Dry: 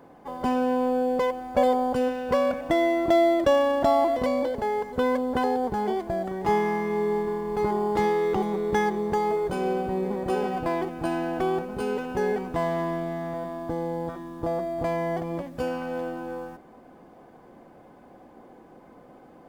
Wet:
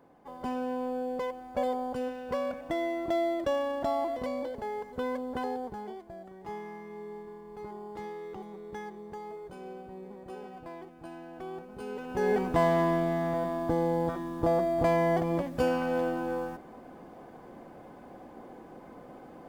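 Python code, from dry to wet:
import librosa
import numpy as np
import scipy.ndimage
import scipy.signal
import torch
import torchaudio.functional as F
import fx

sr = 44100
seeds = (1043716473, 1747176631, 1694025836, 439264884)

y = fx.gain(x, sr, db=fx.line((5.53, -9.0), (6.05, -17.0), (11.28, -17.0), (11.95, -10.0), (12.4, 2.0)))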